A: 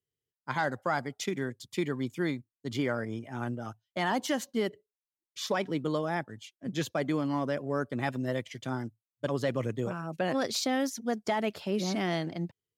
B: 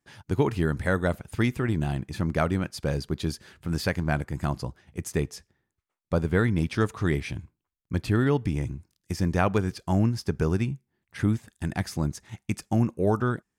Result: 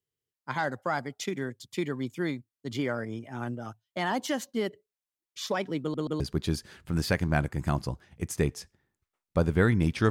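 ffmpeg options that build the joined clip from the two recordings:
-filter_complex "[0:a]apad=whole_dur=10.1,atrim=end=10.1,asplit=3[a][b][c];[a]atrim=end=5.942[d];[b]atrim=start=5.808:end=5.942[e];[c]atrim=start=5.808:end=5.942[f];[1:a]atrim=start=2.958:end=6.86[g];[d][e]acrossfade=d=0.004:c1=hsin:c2=hsin[h];[h][f]acrossfade=d=0.004:c1=hsin:c2=hsin[i];[i][g]acrossfade=d=0.004:c1=hsin:c2=hsin"

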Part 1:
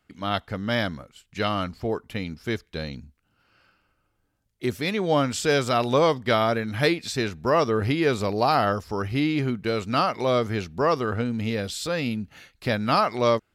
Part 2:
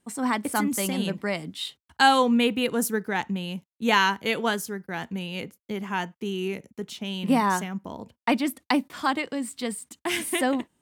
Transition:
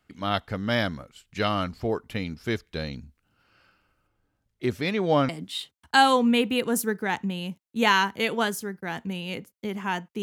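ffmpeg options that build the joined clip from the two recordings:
-filter_complex "[0:a]asettb=1/sr,asplit=3[a][b][c];[a]atrim=end=4.074[d];[b]atrim=start=4.07:end=5.29,asetpts=PTS-STARTPTS,afade=t=in:d=0.004:c=qsin,afade=t=out:st=1.216:d=0.004:c=qsin,highshelf=f=5.5k:g=-8.5[e];[c]atrim=start=5.286[f];[d][e]acrossfade=d=0.004:c1=hsin:c2=qsin[g];[g][f]acrossfade=d=0.004:c1=qsin:c2=hsin,apad=whole_dur=10.22,atrim=end=10.22,atrim=end=5.292[h];[1:a]atrim=start=1.348:end=6.28[i];[h][i]acrossfade=d=0.004:c1=hsin:c2=hsin"

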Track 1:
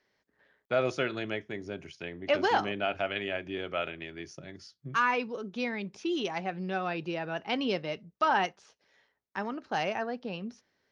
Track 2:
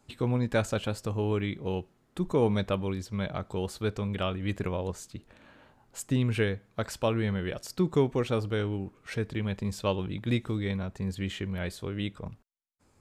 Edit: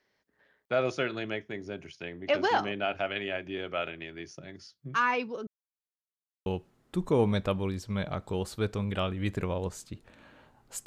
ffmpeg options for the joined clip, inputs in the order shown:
-filter_complex "[0:a]apad=whole_dur=10.86,atrim=end=10.86,asplit=2[a][b];[a]atrim=end=5.47,asetpts=PTS-STARTPTS,afade=t=out:st=5.466:d=0.004:c=hsin[c];[b]atrim=start=5.47:end=6.46,asetpts=PTS-STARTPTS,volume=0[d];[1:a]atrim=start=1.69:end=6.09,asetpts=PTS-STARTPTS,afade=t=in:d=0.004:c=hsin[e];[c][d][e]concat=n=3:v=0:a=1"

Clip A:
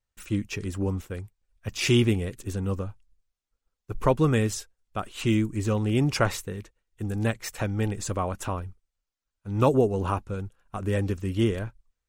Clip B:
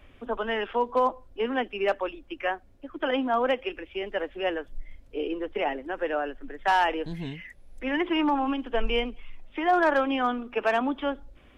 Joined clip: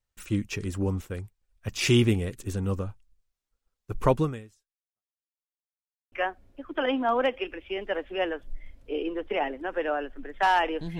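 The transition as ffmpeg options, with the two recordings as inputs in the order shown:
-filter_complex "[0:a]apad=whole_dur=10.99,atrim=end=10.99,asplit=2[a][b];[a]atrim=end=5.3,asetpts=PTS-STARTPTS,afade=t=out:st=4.19:d=1.11:c=exp[c];[b]atrim=start=5.3:end=6.12,asetpts=PTS-STARTPTS,volume=0[d];[1:a]atrim=start=2.37:end=7.24,asetpts=PTS-STARTPTS,afade=t=in:d=0.004:c=hsin[e];[c][d][e]concat=n=3:v=0:a=1"

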